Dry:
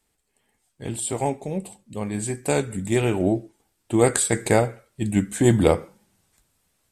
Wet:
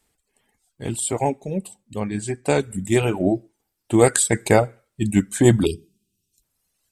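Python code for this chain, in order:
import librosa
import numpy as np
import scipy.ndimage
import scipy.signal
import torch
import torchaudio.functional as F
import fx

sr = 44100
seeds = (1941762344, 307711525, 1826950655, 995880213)

y = fx.bessel_lowpass(x, sr, hz=5700.0, order=2, at=(2.0, 2.6))
y = fx.dereverb_blind(y, sr, rt60_s=1.5)
y = fx.spec_erase(y, sr, start_s=5.65, length_s=0.78, low_hz=440.0, high_hz=2400.0)
y = y * librosa.db_to_amplitude(3.5)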